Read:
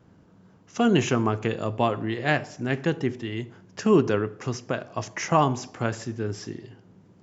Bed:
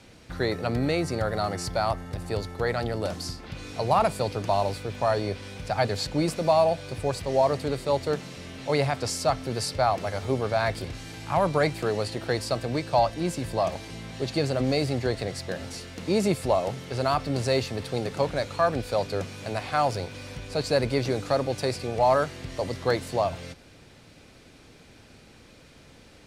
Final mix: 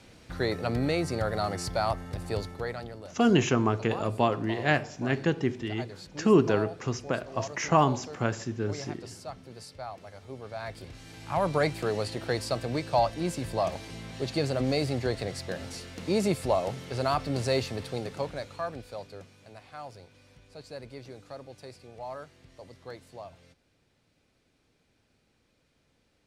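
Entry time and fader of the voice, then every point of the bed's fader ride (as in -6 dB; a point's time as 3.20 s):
2.40 s, -1.5 dB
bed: 2.41 s -2 dB
3.10 s -16.5 dB
10.27 s -16.5 dB
11.52 s -2.5 dB
17.71 s -2.5 dB
19.48 s -18.5 dB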